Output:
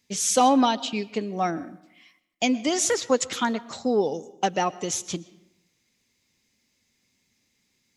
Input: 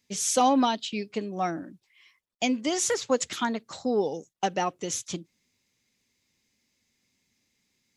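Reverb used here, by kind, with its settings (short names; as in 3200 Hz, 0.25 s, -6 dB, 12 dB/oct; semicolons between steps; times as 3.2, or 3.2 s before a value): digital reverb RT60 0.87 s, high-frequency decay 0.65×, pre-delay 80 ms, DRR 19 dB; gain +3 dB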